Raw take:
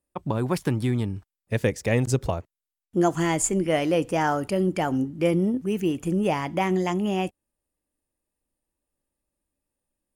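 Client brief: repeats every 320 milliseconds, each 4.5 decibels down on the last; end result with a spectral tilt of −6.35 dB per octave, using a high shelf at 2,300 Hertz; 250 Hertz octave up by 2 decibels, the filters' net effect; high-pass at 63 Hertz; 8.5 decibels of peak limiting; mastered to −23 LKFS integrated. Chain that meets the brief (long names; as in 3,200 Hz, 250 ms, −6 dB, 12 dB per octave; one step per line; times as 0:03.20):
high-pass filter 63 Hz
parametric band 250 Hz +3 dB
high-shelf EQ 2,300 Hz −4.5 dB
brickwall limiter −16.5 dBFS
repeating echo 320 ms, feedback 60%, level −4.5 dB
level +2 dB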